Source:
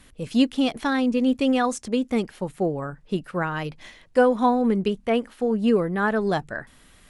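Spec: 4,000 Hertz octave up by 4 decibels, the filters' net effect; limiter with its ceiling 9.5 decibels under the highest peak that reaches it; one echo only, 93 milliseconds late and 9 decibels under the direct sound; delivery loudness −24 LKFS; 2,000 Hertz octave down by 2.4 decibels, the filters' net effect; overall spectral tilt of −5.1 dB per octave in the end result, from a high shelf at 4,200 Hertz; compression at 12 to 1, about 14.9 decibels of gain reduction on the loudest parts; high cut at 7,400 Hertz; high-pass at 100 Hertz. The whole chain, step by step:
high-pass filter 100 Hz
low-pass filter 7,400 Hz
parametric band 2,000 Hz −6 dB
parametric band 4,000 Hz +4.5 dB
high-shelf EQ 4,200 Hz +7.5 dB
downward compressor 12 to 1, threshold −28 dBFS
brickwall limiter −27.5 dBFS
single-tap delay 93 ms −9 dB
level +12 dB

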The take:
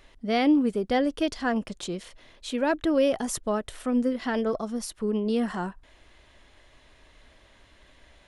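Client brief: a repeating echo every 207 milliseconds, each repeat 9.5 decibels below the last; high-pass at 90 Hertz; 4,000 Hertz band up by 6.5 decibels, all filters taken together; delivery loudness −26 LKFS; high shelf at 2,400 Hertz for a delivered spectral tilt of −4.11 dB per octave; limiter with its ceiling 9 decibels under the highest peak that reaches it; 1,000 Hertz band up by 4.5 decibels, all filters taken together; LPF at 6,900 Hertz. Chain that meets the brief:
high-pass filter 90 Hz
low-pass filter 6,900 Hz
parametric band 1,000 Hz +5.5 dB
high-shelf EQ 2,400 Hz +3.5 dB
parametric band 4,000 Hz +5.5 dB
brickwall limiter −18 dBFS
repeating echo 207 ms, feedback 33%, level −9.5 dB
level +1.5 dB

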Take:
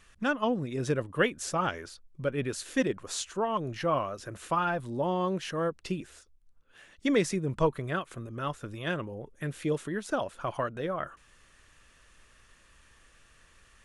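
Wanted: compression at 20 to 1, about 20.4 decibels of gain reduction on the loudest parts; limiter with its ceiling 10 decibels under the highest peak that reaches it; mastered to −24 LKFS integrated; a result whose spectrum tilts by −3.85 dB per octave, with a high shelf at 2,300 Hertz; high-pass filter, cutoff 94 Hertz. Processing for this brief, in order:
high-pass filter 94 Hz
high-shelf EQ 2,300 Hz +7.5 dB
downward compressor 20 to 1, threshold −39 dBFS
level +22.5 dB
brickwall limiter −12 dBFS

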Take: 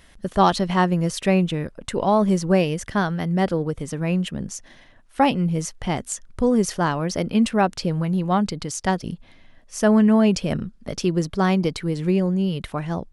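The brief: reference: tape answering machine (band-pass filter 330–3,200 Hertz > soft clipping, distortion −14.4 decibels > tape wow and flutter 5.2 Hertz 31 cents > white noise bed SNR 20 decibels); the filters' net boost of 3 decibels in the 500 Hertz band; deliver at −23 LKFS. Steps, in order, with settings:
band-pass filter 330–3,200 Hz
parametric band 500 Hz +5 dB
soft clipping −11 dBFS
tape wow and flutter 5.2 Hz 31 cents
white noise bed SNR 20 dB
level +2 dB

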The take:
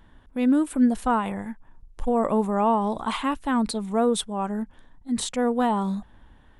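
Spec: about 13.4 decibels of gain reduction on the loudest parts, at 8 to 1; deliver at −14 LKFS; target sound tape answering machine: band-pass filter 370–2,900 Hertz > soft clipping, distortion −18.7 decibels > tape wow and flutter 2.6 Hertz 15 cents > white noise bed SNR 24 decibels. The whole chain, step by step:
downward compressor 8 to 1, threshold −30 dBFS
band-pass filter 370–2,900 Hz
soft clipping −27 dBFS
tape wow and flutter 2.6 Hz 15 cents
white noise bed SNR 24 dB
level +25.5 dB

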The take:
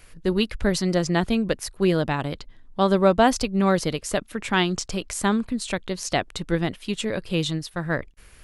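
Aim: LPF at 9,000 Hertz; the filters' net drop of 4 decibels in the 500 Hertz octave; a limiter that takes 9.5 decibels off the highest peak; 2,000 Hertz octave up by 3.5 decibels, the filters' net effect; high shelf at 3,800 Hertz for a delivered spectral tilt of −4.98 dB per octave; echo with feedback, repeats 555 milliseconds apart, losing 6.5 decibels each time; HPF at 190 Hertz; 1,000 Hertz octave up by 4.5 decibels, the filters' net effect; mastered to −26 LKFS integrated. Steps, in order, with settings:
high-pass filter 190 Hz
low-pass filter 9,000 Hz
parametric band 500 Hz −8 dB
parametric band 1,000 Hz +8.5 dB
parametric band 2,000 Hz +4 dB
high-shelf EQ 3,800 Hz −9 dB
brickwall limiter −13 dBFS
repeating echo 555 ms, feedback 47%, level −6.5 dB
level +1 dB

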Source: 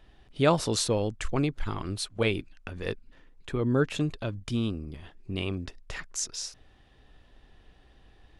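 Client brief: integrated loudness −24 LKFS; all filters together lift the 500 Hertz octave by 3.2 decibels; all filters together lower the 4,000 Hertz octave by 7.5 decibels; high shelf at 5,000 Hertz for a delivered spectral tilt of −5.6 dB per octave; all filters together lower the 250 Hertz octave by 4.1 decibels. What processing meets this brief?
parametric band 250 Hz −7.5 dB
parametric band 500 Hz +6 dB
parametric band 4,000 Hz −8 dB
high-shelf EQ 5,000 Hz −3.5 dB
level +6 dB

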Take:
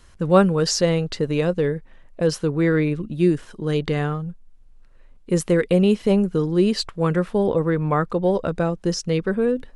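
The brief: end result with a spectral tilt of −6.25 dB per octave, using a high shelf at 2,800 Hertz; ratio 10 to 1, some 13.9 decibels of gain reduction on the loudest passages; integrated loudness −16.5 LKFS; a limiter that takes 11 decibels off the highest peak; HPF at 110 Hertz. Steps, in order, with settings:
high-pass filter 110 Hz
high-shelf EQ 2,800 Hz −4.5 dB
downward compressor 10 to 1, threshold −23 dBFS
level +17 dB
brickwall limiter −8 dBFS

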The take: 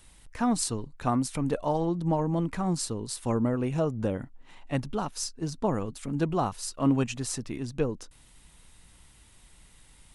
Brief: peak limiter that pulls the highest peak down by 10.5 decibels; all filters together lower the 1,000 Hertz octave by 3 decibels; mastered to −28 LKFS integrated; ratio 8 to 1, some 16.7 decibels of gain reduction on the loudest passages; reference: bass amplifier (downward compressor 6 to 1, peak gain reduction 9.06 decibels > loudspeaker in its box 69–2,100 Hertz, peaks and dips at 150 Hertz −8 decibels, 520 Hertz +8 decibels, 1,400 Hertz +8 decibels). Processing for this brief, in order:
parametric band 1,000 Hz −6.5 dB
downward compressor 8 to 1, threshold −37 dBFS
brickwall limiter −33 dBFS
downward compressor 6 to 1, threshold −46 dBFS
loudspeaker in its box 69–2,100 Hz, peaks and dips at 150 Hz −8 dB, 520 Hz +8 dB, 1,400 Hz +8 dB
level +23.5 dB

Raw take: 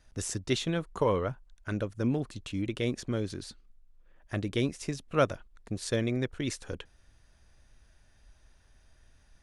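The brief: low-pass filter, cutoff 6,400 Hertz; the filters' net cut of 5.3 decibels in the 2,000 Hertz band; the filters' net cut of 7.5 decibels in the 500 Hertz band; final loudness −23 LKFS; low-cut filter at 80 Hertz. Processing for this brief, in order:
high-pass filter 80 Hz
low-pass filter 6,400 Hz
parametric band 500 Hz −9 dB
parametric band 2,000 Hz −6.5 dB
level +13 dB

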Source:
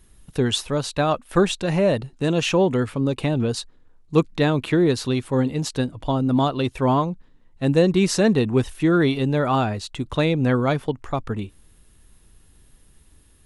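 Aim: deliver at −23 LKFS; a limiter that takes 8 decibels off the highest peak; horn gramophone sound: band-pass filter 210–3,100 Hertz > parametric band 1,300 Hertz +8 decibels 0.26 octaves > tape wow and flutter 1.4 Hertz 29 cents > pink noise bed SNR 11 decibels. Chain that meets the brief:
brickwall limiter −12.5 dBFS
band-pass filter 210–3,100 Hz
parametric band 1,300 Hz +8 dB 0.26 octaves
tape wow and flutter 1.4 Hz 29 cents
pink noise bed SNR 11 dB
level +1.5 dB

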